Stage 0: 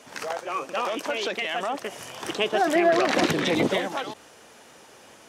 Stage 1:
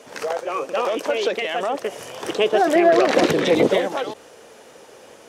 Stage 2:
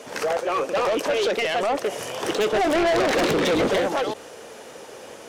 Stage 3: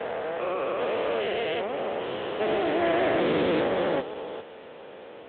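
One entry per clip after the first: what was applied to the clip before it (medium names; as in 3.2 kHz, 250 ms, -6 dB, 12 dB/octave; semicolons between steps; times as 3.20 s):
peaking EQ 480 Hz +9 dB 0.81 oct; trim +1.5 dB
saturation -22.5 dBFS, distortion -6 dB; trim +4.5 dB
spectrogram pixelated in time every 400 ms; AMR-NB 10.2 kbps 8 kHz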